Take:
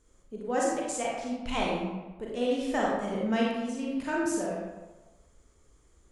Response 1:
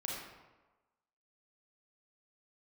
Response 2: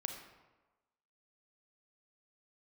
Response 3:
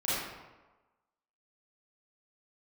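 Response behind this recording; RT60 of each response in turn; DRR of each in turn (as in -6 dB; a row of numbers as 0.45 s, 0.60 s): 1; 1.2 s, 1.2 s, 1.2 s; -3.5 dB, 4.0 dB, -11.5 dB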